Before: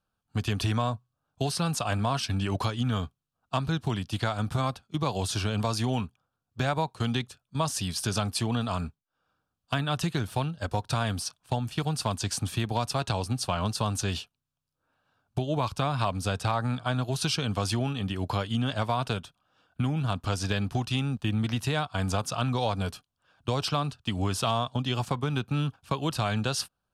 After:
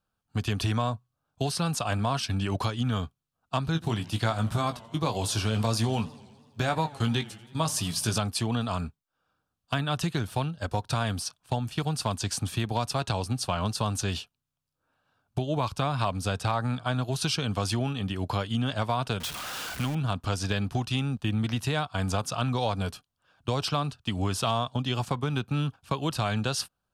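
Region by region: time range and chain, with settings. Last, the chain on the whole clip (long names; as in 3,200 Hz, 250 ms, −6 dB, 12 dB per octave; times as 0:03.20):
0:03.73–0:08.18: high-shelf EQ 10,000 Hz +6 dB + double-tracking delay 18 ms −7.5 dB + feedback echo with a swinging delay time 82 ms, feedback 71%, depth 186 cents, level −20.5 dB
0:19.20–0:19.95: converter with a step at zero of −32 dBFS + tilt shelving filter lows −4.5 dB, about 920 Hz
whole clip: no processing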